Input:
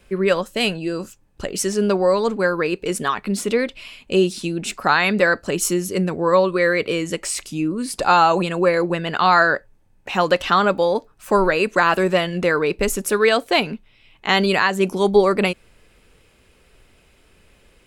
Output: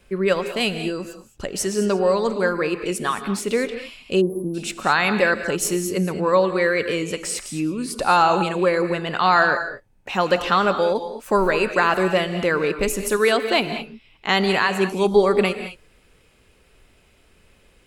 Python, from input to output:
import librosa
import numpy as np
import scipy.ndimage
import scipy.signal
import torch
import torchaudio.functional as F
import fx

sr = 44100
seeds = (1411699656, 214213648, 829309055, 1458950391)

y = fx.rev_gated(x, sr, seeds[0], gate_ms=240, shape='rising', drr_db=9.0)
y = fx.spec_erase(y, sr, start_s=4.21, length_s=0.33, low_hz=1200.0, high_hz=9800.0)
y = y * librosa.db_to_amplitude(-2.0)